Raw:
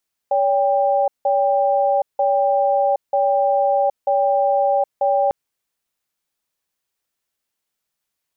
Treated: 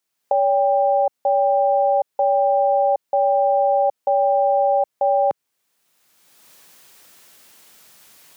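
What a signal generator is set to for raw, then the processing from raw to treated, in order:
cadence 567 Hz, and 793 Hz, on 0.77 s, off 0.17 s, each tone -17 dBFS 5.00 s
recorder AGC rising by 25 dB/s; HPF 120 Hz 12 dB/oct

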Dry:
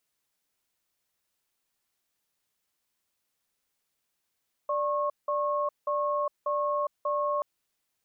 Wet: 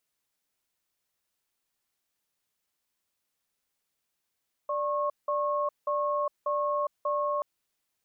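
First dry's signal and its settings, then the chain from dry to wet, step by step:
cadence 588 Hz, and 1090 Hz, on 0.41 s, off 0.18 s, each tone -28 dBFS 2.73 s
vocal rider

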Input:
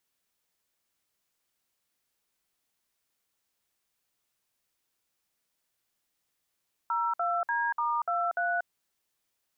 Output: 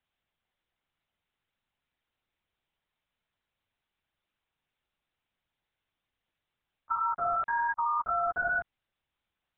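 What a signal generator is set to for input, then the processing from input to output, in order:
DTMF "02D*23", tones 0.237 s, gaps 57 ms, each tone -28.5 dBFS
LPC vocoder at 8 kHz whisper

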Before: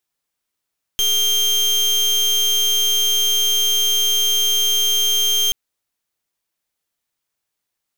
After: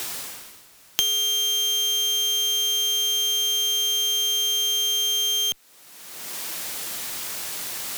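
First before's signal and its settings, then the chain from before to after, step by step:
pulse 3180 Hz, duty 32% -17 dBFS 4.53 s
reverse; upward compressor, threshold -39 dBFS; reverse; tube stage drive 21 dB, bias 0.45; three-band squash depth 100%

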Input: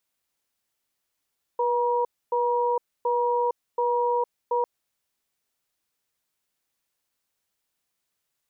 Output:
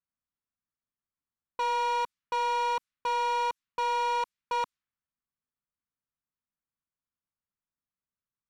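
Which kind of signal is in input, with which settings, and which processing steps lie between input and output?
cadence 485 Hz, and 955 Hz, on 0.46 s, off 0.27 s, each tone -23.5 dBFS 3.05 s
band shelf 530 Hz -11 dB; low-pass opened by the level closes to 1000 Hz, open at -30 dBFS; sample leveller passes 3

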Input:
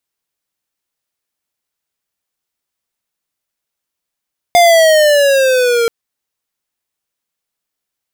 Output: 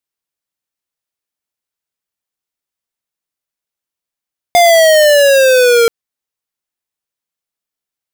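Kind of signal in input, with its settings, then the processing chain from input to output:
gliding synth tone square, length 1.33 s, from 707 Hz, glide -7.5 st, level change -6 dB, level -6.5 dB
sample leveller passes 3

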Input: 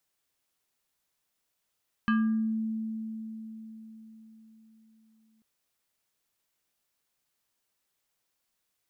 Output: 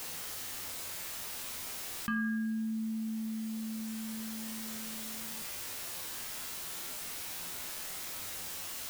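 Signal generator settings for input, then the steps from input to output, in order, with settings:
FM tone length 3.34 s, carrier 221 Hz, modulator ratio 6.39, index 0.99, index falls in 0.58 s exponential, decay 4.61 s, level -21 dB
in parallel at -6 dB: requantised 8-bit, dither triangular; on the sum: resonator 86 Hz, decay 0.7 s, harmonics all, mix 80%; fast leveller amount 70%

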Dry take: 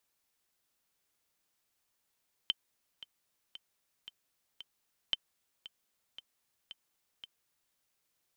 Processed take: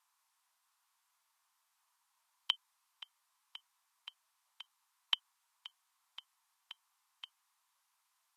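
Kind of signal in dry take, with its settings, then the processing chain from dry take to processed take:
metronome 114 bpm, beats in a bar 5, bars 2, 3090 Hz, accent 17 dB -16 dBFS
resonant high-pass 1000 Hz, resonance Q 4.9; Vorbis 32 kbps 48000 Hz

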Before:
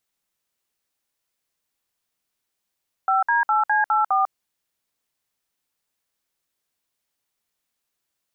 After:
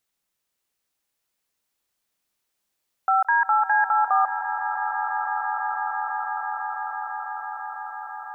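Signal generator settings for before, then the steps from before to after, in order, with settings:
DTMF "5D8C84", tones 0.147 s, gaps 58 ms, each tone -19 dBFS
swelling echo 0.166 s, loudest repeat 8, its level -13 dB

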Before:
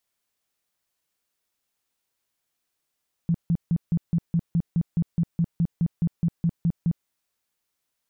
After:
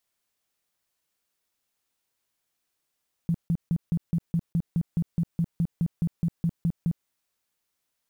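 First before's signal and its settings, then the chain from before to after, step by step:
tone bursts 168 Hz, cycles 9, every 0.21 s, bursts 18, -18 dBFS
block floating point 7-bit; compressor 2.5:1, threshold -24 dBFS

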